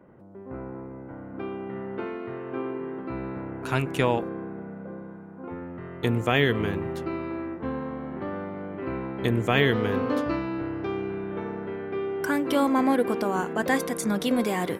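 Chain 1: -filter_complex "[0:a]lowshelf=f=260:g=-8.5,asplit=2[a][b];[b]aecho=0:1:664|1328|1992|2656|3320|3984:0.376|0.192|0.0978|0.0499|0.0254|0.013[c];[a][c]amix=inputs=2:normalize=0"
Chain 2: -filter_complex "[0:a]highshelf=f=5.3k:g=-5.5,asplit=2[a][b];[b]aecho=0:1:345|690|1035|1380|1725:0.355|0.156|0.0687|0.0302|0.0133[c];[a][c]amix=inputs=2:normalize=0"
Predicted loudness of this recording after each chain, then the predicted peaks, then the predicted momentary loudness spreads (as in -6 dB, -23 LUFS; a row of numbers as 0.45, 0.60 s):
-29.5, -27.5 LUFS; -8.0, -7.0 dBFS; 15, 16 LU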